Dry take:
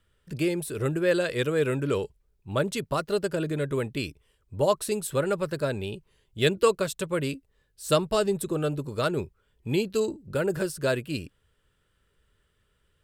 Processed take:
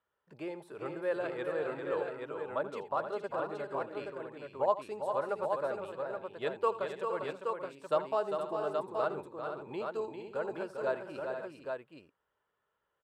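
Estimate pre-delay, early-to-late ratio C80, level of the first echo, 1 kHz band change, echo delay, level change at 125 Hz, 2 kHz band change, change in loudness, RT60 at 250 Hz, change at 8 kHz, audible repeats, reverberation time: no reverb, no reverb, -15.5 dB, -1.5 dB, 82 ms, -21.0 dB, -9.5 dB, -8.5 dB, no reverb, under -25 dB, 5, no reverb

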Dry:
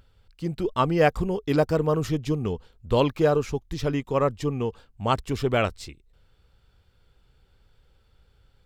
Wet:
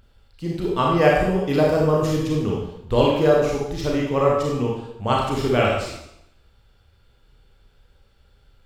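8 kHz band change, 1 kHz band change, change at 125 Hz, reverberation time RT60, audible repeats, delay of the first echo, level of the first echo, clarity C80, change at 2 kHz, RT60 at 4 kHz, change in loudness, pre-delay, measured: +5.0 dB, +4.5 dB, +3.0 dB, 0.80 s, no echo, no echo, no echo, 4.0 dB, +5.0 dB, 0.75 s, +4.5 dB, 28 ms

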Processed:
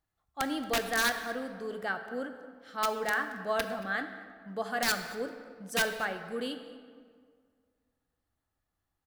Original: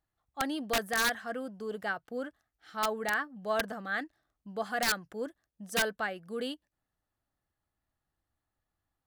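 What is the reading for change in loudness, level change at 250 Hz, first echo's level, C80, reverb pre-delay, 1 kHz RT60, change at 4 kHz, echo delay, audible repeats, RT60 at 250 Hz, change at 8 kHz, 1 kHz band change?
+0.5 dB, +1.0 dB, -21.0 dB, 10.0 dB, 8 ms, 1.9 s, +0.5 dB, 227 ms, 1, 2.0 s, +0.5 dB, +1.0 dB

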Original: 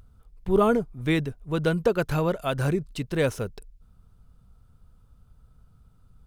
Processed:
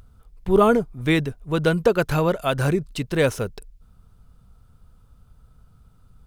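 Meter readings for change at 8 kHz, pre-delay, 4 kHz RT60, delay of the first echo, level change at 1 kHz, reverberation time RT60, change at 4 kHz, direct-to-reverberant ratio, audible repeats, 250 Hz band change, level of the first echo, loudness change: +5.5 dB, no reverb, no reverb, no echo, +5.0 dB, no reverb, +5.5 dB, no reverb, no echo, +3.5 dB, no echo, +4.0 dB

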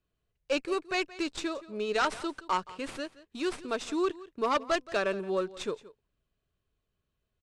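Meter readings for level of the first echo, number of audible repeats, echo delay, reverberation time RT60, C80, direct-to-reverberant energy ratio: -18.5 dB, 1, 173 ms, no reverb, no reverb, no reverb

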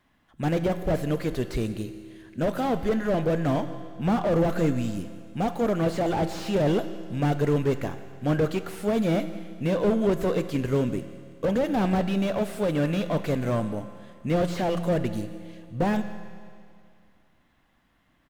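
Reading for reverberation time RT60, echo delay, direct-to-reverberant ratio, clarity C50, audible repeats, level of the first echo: 2.3 s, 171 ms, 10.0 dB, 11.0 dB, 1, -21.0 dB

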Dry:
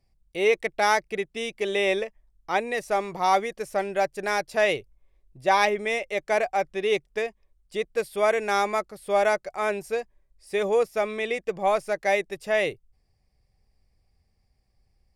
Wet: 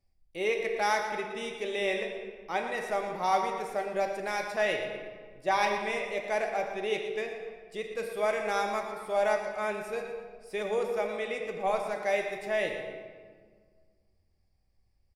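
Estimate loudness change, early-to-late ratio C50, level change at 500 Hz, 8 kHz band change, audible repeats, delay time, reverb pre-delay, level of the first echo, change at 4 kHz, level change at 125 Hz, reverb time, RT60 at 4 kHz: -5.5 dB, 4.0 dB, -5.5 dB, -6.0 dB, 1, 117 ms, 4 ms, -10.5 dB, -5.5 dB, no reading, 1.7 s, 1.1 s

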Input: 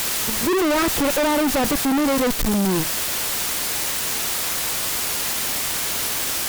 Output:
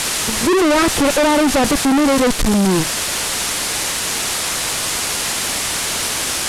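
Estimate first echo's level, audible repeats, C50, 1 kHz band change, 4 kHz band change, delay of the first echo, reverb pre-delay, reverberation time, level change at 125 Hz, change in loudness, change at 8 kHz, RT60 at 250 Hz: no echo, no echo, no reverb, +5.5 dB, +5.5 dB, no echo, no reverb, no reverb, +5.5 dB, +4.0 dB, +5.0 dB, no reverb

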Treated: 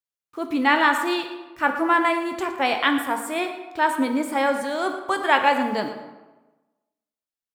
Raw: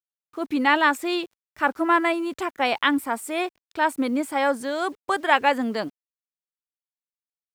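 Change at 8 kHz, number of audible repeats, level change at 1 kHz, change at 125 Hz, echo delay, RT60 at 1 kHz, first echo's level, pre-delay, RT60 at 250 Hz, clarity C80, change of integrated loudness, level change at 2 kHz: +1.0 dB, 1, +1.5 dB, no reading, 115 ms, 1.2 s, -14.0 dB, 9 ms, 1.1 s, 8.5 dB, +1.0 dB, +1.5 dB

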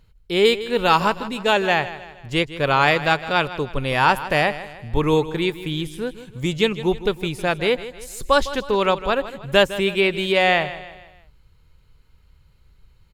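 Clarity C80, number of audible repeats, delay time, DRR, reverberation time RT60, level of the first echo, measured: no reverb, 3, 157 ms, no reverb, no reverb, -14.5 dB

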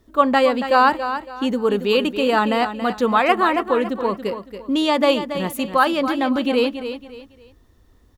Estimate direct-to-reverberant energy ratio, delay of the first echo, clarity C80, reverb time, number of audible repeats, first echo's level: no reverb, 279 ms, no reverb, no reverb, 3, -10.0 dB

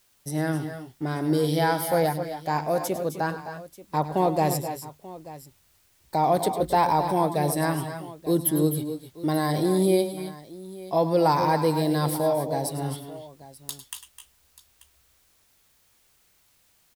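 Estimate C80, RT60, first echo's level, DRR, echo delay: no reverb, no reverb, -14.5 dB, no reverb, 100 ms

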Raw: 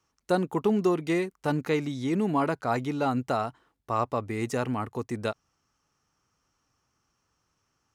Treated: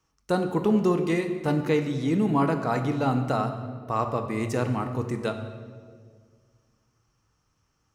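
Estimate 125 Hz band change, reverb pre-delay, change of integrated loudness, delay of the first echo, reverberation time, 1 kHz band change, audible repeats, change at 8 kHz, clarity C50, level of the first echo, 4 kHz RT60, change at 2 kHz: +5.5 dB, 4 ms, +2.5 dB, no echo, 1.8 s, +1.0 dB, no echo, +0.5 dB, 8.5 dB, no echo, 1.2 s, +1.0 dB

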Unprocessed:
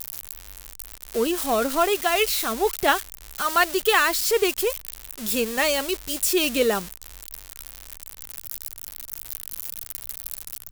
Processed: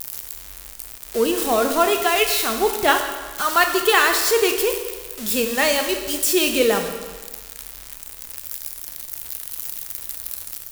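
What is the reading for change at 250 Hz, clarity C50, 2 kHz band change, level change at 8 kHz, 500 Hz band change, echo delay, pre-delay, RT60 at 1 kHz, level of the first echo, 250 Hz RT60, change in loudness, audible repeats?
+3.0 dB, 6.5 dB, +3.5 dB, +3.5 dB, +3.5 dB, no echo, 24 ms, 1.4 s, no echo, 1.4 s, +3.5 dB, no echo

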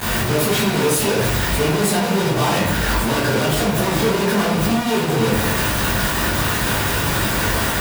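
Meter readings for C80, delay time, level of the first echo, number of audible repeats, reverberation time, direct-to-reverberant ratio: 5.0 dB, no echo, no echo, no echo, 0.75 s, -11.5 dB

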